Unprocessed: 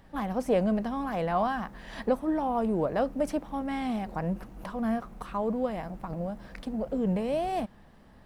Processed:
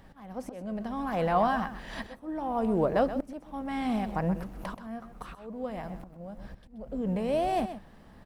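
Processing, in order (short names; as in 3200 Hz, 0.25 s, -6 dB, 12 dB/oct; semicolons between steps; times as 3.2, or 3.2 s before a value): 6.37–7.02 low shelf 140 Hz +9.5 dB; auto swell 0.749 s; echo 0.128 s -11.5 dB; gain +2 dB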